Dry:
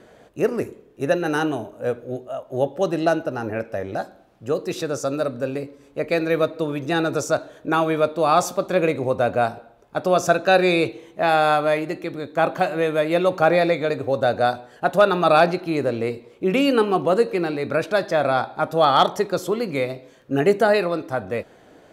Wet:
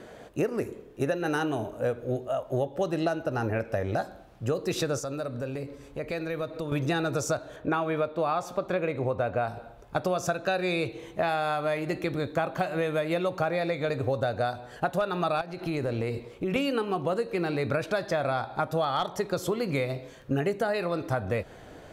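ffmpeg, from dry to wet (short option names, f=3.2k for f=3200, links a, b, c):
-filter_complex "[0:a]asettb=1/sr,asplit=3[a][b][c];[a]atrim=end=4.994[d];[b]atrim=start=4.99:end=6.72,asetpts=PTS-STARTPTS,afade=t=in:d=0.004:c=qsin,afade=t=out:st=1.726:d=0.004:c=qsin,acompressor=threshold=-37dB:ratio=2.5:attack=3.2:release=140:knee=1:detection=peak[e];[c]atrim=start=6.716[f];[d][e]acrossfade=d=0.004:c1=hsin:c2=qsin[g];[g][f]acrossfade=d=0.004:c1=qsin:c2=hsin,asettb=1/sr,asplit=3[h][i][j];[h]atrim=end=7.564[k];[i]atrim=start=7.56:end=9.48,asetpts=PTS-STARTPTS,afade=t=in:d=0.004:c=qsin,afade=t=out:st=1.916:d=0.004:c=qsin,bass=f=250:g=-3,treble=f=4k:g=-10[l];[j]atrim=start=9.476[m];[k][l]acrossfade=d=0.004:c1=hsin:c2=qsin[n];[n][m]acrossfade=d=0.004:c1=qsin:c2=hsin,asettb=1/sr,asplit=3[o][p][q];[o]atrim=end=15.414[r];[p]atrim=start=15.41:end=16.56,asetpts=PTS-STARTPTS,afade=t=in:d=0.004:c=qsin,afade=t=out:st=1.146:d=0.004:c=qsin,acompressor=threshold=-29dB:ratio=3:attack=3.2:release=140:knee=1:detection=peak[s];[q]atrim=start=16.556[t];[r][s]acrossfade=d=0.004:c1=hsin:c2=qsin[u];[u][t]acrossfade=d=0.004:c1=qsin:c2=hsin,asubboost=boost=3:cutoff=130,acompressor=threshold=-27dB:ratio=12,volume=3dB"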